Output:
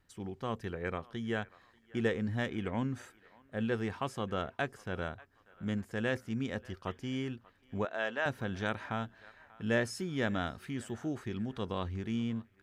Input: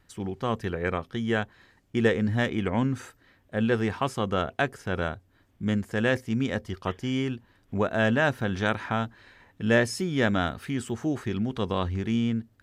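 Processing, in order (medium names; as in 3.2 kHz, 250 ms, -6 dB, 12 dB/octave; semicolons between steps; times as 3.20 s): 7.85–8.26 s: band-pass 490–6200 Hz; band-passed feedback delay 589 ms, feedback 49%, band-pass 1.4 kHz, level -20 dB; trim -8.5 dB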